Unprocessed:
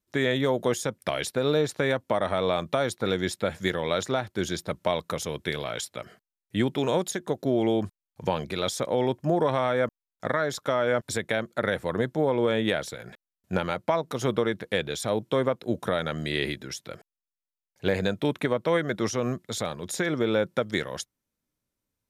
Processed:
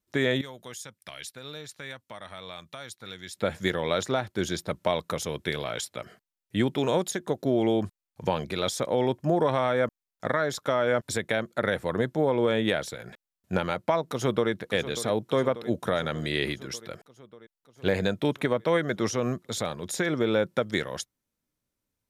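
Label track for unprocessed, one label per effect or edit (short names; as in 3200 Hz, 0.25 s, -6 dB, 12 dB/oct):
0.410000	3.360000	passive tone stack bass-middle-treble 5-5-5
14.090000	14.510000	echo throw 0.59 s, feedback 70%, level -12.5 dB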